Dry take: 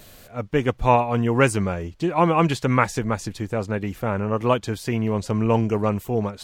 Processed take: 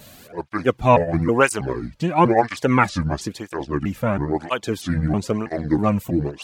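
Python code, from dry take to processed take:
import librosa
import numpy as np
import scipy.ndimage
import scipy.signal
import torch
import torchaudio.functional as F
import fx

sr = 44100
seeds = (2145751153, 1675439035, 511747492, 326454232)

y = fx.pitch_trill(x, sr, semitones=-6.0, every_ms=321)
y = fx.flanger_cancel(y, sr, hz=1.0, depth_ms=2.9)
y = y * 10.0 ** (5.5 / 20.0)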